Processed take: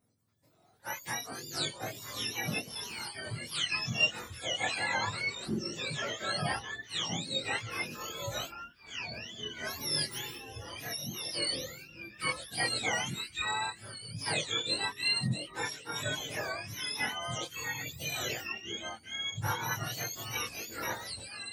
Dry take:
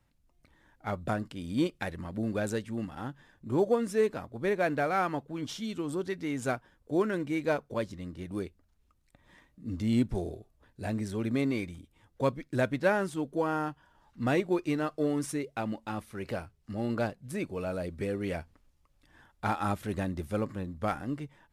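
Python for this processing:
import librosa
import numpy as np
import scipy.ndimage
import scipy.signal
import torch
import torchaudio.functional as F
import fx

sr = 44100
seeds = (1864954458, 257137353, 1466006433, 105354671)

y = fx.octave_mirror(x, sr, pivot_hz=1100.0)
y = fx.echo_pitch(y, sr, ms=182, semitones=-4, count=3, db_per_echo=-6.0)
y = fx.chorus_voices(y, sr, voices=6, hz=0.13, base_ms=22, depth_ms=4.7, mix_pct=50)
y = F.gain(torch.from_numpy(y), 2.5).numpy()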